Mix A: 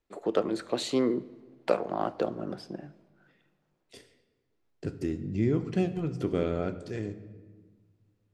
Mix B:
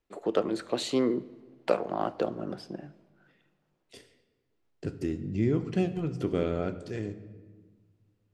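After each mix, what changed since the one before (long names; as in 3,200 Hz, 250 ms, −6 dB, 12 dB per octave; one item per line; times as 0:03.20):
master: add parametric band 2,900 Hz +2.5 dB 0.21 octaves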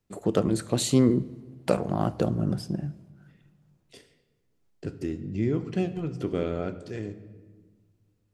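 first voice: remove three-way crossover with the lows and the highs turned down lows −21 dB, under 290 Hz, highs −16 dB, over 4,800 Hz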